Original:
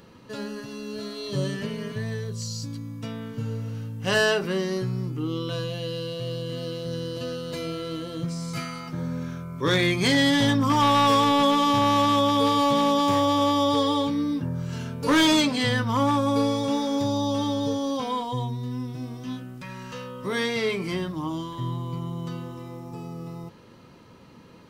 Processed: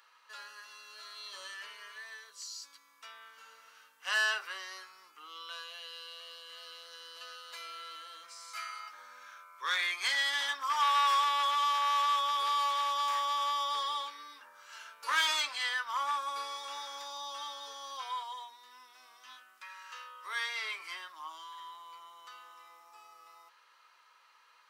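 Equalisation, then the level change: ladder high-pass 980 Hz, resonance 35%; 0.0 dB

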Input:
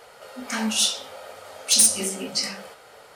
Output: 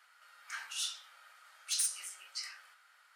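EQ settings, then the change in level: ladder high-pass 1.2 kHz, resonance 45%; -7.5 dB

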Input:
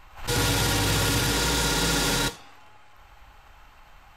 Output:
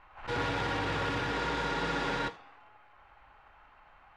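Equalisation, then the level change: low-pass 2 kHz 12 dB/octave; bass shelf 270 Hz -11 dB; -2.5 dB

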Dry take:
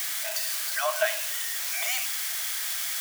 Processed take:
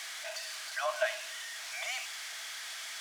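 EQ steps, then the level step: high-pass 170 Hz 24 dB/octave; distance through air 71 m; -5.0 dB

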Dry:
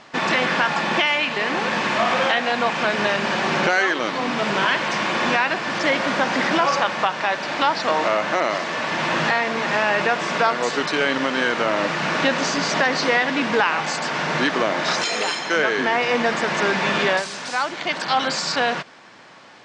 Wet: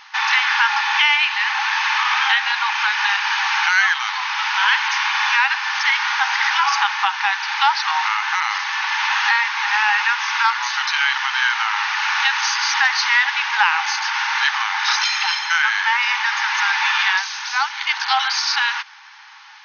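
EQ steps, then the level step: brick-wall FIR band-pass 780–6600 Hz; peaking EQ 1.1 kHz -4.5 dB 0.38 oct; +5.0 dB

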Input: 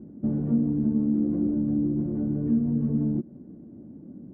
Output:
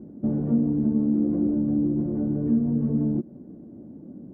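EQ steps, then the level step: peaking EQ 620 Hz +5 dB 1.9 oct; 0.0 dB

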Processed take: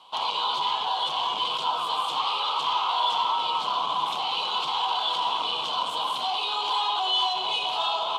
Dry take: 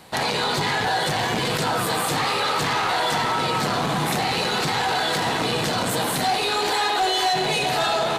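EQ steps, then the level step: two resonant band-passes 1.8 kHz, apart 1.6 oct; +5.5 dB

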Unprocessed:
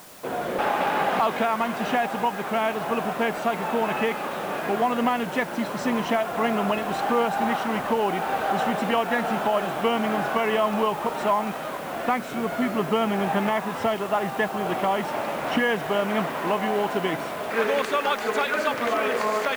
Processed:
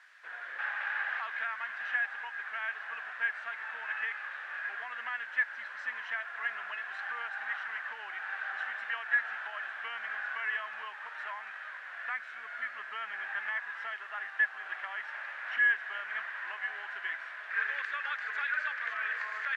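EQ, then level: ladder band-pass 1.8 kHz, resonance 75%; 0.0 dB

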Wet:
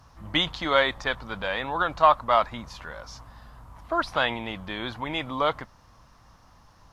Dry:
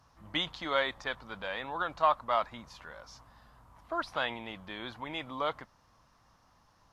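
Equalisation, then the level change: bass shelf 110 Hz +7.5 dB; +8.0 dB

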